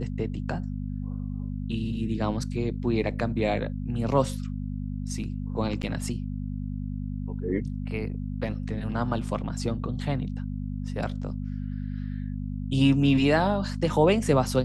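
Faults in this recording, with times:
mains hum 50 Hz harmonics 5 −32 dBFS
0:05.82–0:05.83: drop-out 8.8 ms

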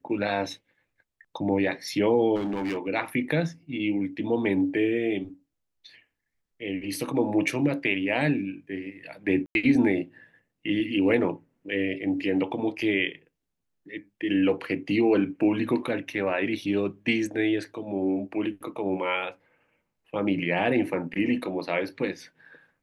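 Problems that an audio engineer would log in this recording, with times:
0:02.35–0:02.78: clipping −25.5 dBFS
0:09.46–0:09.55: drop-out 91 ms

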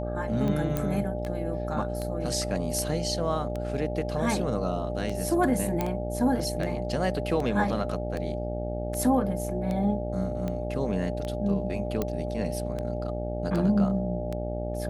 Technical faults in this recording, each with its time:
mains buzz 60 Hz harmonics 14 −33 dBFS
scratch tick 78 rpm −20 dBFS
whistle 600 Hz −35 dBFS
0:00.77: click −14 dBFS
0:05.81: click −13 dBFS
0:12.02: click −15 dBFS

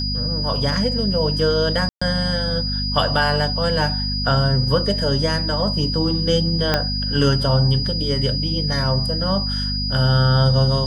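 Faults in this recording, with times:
mains hum 50 Hz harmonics 5 −25 dBFS
whistle 4,900 Hz −24 dBFS
0:01.89–0:02.02: drop-out 125 ms
0:06.74: click −3 dBFS

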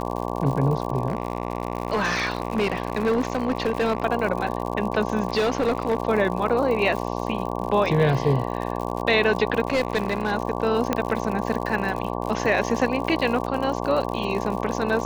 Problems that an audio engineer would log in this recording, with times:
mains buzz 60 Hz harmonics 19 −28 dBFS
surface crackle 90 per second −29 dBFS
0:01.08–0:04.03: clipping −17.5 dBFS
0:05.28–0:05.98: clipping −17 dBFS
0:09.67–0:10.33: clipping −17 dBFS
0:10.93: click −8 dBFS

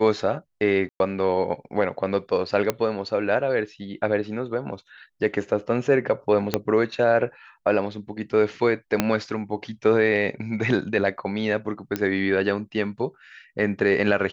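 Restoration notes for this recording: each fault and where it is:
0:00.89–0:01.00: drop-out 111 ms
0:02.70: click −8 dBFS
0:06.54: click −6 dBFS
0:09.00: click −5 dBFS
0:11.96: click −11 dBFS

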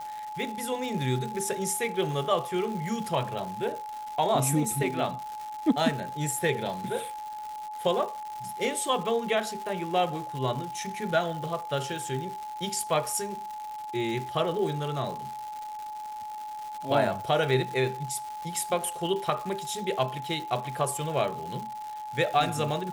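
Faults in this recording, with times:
surface crackle 270 per second −35 dBFS
whistle 850 Hz −35 dBFS

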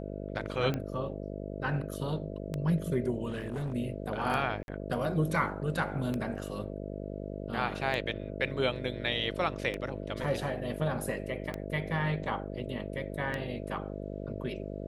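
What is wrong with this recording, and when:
mains buzz 50 Hz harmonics 13 −39 dBFS
scratch tick 33 1/3 rpm −20 dBFS
0:03.28–0:03.73: clipping −31 dBFS
0:04.63–0:04.68: drop-out 51 ms
0:10.24: drop-out 2.1 ms

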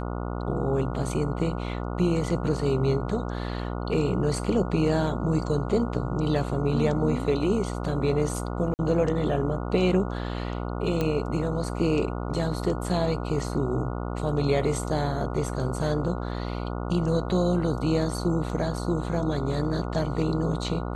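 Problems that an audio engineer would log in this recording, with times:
mains buzz 60 Hz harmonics 24 −31 dBFS
0:08.74–0:08.79: drop-out 49 ms
0:11.01: click −14 dBFS

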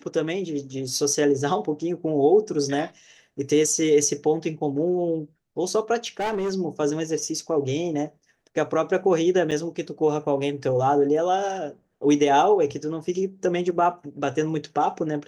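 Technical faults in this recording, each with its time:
0:06.04–0:06.52: clipping −22.5 dBFS
0:09.51–0:09.52: drop-out 6.1 ms

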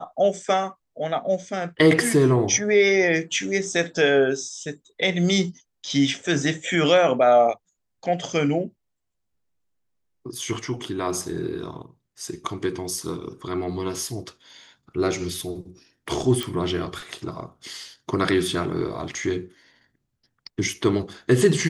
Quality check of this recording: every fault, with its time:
0:16.43: click

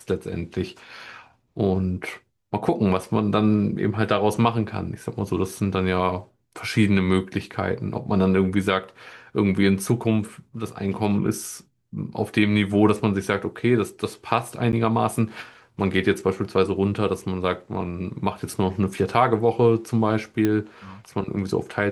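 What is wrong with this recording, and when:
0:14.72–0:14.73: drop-out 9.6 ms
0:20.45: click −10 dBFS

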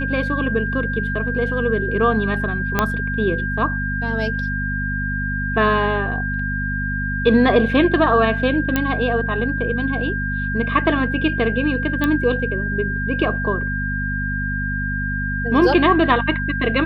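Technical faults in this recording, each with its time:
mains hum 50 Hz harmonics 5 −25 dBFS
whistle 1,600 Hz −24 dBFS
0:02.79: click −3 dBFS
0:08.76: click −5 dBFS
0:12.04: click −8 dBFS

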